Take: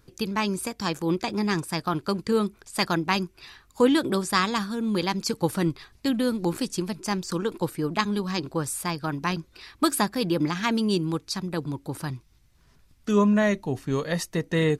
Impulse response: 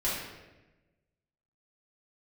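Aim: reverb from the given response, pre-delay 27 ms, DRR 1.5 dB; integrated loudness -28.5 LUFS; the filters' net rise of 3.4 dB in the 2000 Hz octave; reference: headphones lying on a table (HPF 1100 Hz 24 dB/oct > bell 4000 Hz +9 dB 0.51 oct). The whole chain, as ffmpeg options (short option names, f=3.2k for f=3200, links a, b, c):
-filter_complex "[0:a]equalizer=f=2k:t=o:g=3.5,asplit=2[a][b];[1:a]atrim=start_sample=2205,adelay=27[c];[b][c]afir=irnorm=-1:irlink=0,volume=-10dB[d];[a][d]amix=inputs=2:normalize=0,highpass=f=1.1k:w=0.5412,highpass=f=1.1k:w=1.3066,equalizer=f=4k:t=o:w=0.51:g=9,volume=-1.5dB"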